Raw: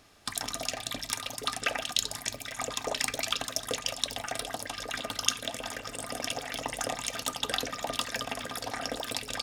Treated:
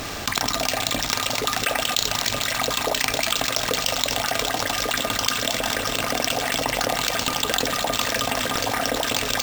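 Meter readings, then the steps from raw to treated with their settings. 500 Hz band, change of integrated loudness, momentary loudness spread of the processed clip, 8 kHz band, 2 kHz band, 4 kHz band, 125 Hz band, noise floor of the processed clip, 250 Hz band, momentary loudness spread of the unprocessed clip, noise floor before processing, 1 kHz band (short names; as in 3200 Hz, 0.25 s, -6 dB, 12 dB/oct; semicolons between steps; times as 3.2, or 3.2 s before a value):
+11.0 dB, +10.5 dB, 2 LU, +8.5 dB, +11.5 dB, +9.5 dB, +12.5 dB, -30 dBFS, +11.5 dB, 6 LU, -46 dBFS, +11.5 dB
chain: thinning echo 0.223 s, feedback 80%, level -13.5 dB; careless resampling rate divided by 4×, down none, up hold; fast leveller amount 70%; gain +2.5 dB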